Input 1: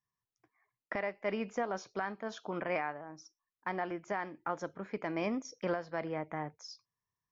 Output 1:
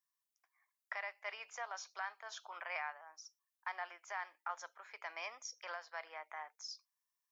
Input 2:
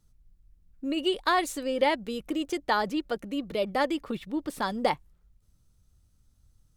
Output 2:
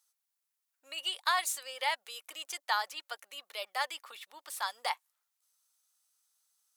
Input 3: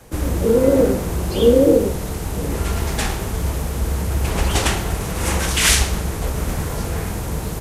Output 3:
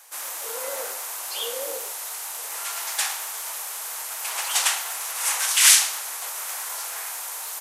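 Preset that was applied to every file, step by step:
high-pass 810 Hz 24 dB/octave; treble shelf 4.8 kHz +10 dB; trim -4 dB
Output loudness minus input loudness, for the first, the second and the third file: -7.5 LU, -6.0 LU, -4.0 LU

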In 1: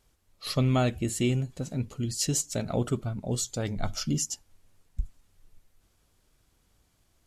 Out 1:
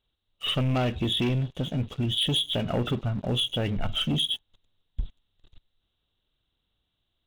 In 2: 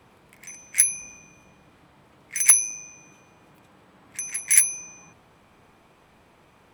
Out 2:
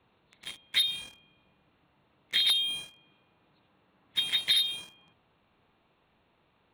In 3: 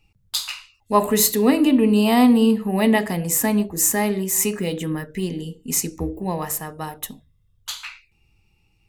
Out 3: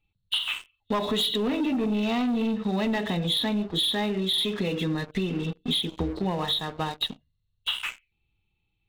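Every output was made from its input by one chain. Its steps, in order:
knee-point frequency compression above 2.6 kHz 4:1; waveshaping leveller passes 3; compression 16:1, threshold -16 dBFS; normalise loudness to -27 LUFS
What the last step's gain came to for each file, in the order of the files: -5.5 dB, -7.0 dB, -7.5 dB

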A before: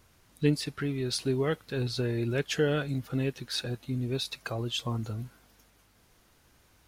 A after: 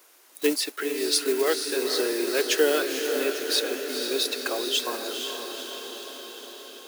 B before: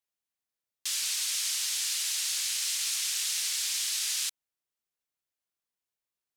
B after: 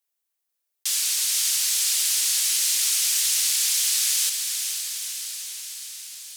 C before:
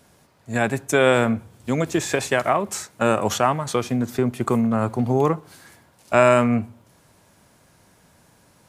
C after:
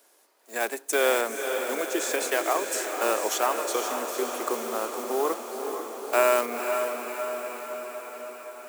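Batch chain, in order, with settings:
block-companded coder 5-bit; steep high-pass 320 Hz 36 dB/octave; treble shelf 7.9 kHz +10 dB; on a send: echo that smears into a reverb 484 ms, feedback 66%, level -6 dB; on the sum: peak normalisation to -9 dBFS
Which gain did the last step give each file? +6.0 dB, +3.0 dB, -6.0 dB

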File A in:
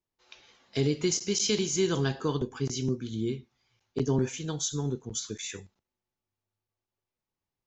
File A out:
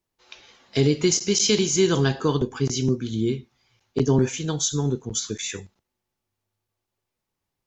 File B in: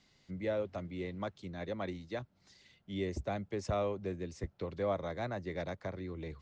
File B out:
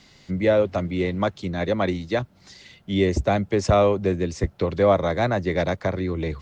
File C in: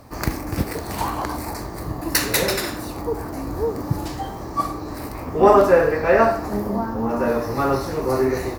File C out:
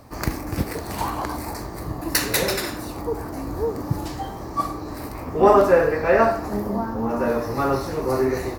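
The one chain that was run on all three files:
AAC 128 kbps 48 kHz; normalise loudness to -23 LUFS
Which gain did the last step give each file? +7.0 dB, +16.0 dB, -1.5 dB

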